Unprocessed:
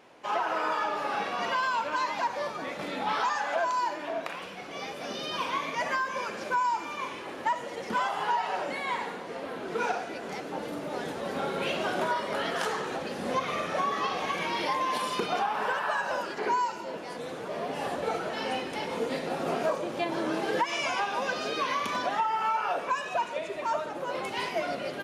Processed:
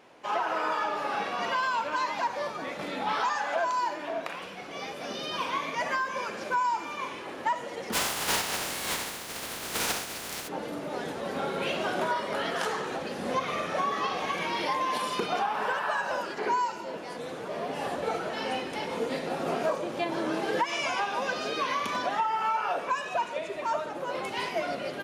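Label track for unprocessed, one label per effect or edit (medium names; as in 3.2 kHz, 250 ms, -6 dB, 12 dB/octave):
7.920000	10.470000	spectral contrast reduction exponent 0.25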